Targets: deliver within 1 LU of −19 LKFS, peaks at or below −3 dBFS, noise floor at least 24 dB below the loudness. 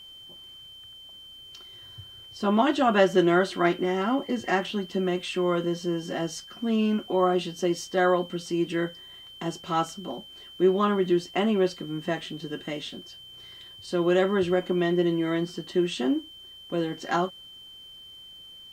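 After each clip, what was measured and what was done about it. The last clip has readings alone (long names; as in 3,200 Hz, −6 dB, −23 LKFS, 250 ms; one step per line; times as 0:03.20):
interfering tone 3,100 Hz; level of the tone −44 dBFS; integrated loudness −26.0 LKFS; sample peak −7.5 dBFS; target loudness −19.0 LKFS
→ notch filter 3,100 Hz, Q 30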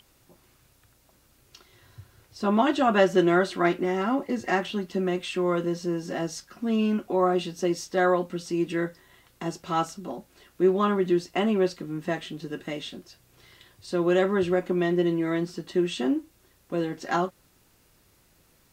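interfering tone none found; integrated loudness −26.0 LKFS; sample peak −8.0 dBFS; target loudness −19.0 LKFS
→ level +7 dB
brickwall limiter −3 dBFS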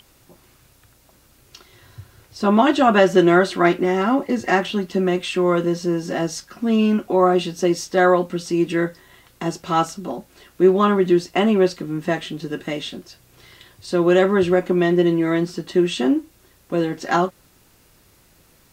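integrated loudness −19.5 LKFS; sample peak −3.0 dBFS; background noise floor −56 dBFS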